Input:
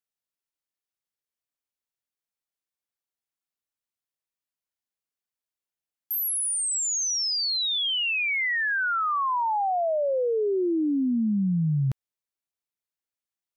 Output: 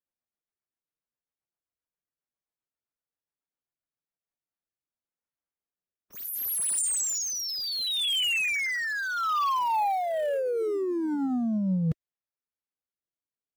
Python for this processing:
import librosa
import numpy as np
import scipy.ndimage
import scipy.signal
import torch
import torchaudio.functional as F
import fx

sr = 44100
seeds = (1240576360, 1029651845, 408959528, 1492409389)

y = fx.env_lowpass(x, sr, base_hz=1700.0, full_db=-23.5)
y = fx.high_shelf(y, sr, hz=3800.0, db=-6.0)
y = fx.leveller(y, sr, passes=1)
y = fx.rider(y, sr, range_db=10, speed_s=0.5)
y = fx.pitch_keep_formants(y, sr, semitones=3.5)
y = fx.rotary_switch(y, sr, hz=7.5, then_hz=0.7, switch_at_s=3.91)
y = y * librosa.db_to_amplitude(1.0)